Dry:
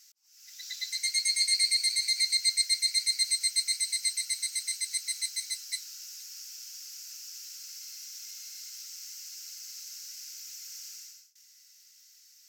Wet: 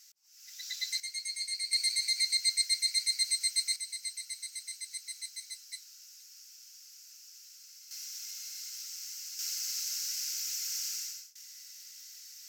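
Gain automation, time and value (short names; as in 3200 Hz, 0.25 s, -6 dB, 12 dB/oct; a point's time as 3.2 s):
0 dB
from 1 s -10 dB
from 1.73 s -2.5 dB
from 3.76 s -9 dB
from 7.91 s +1 dB
from 9.39 s +8 dB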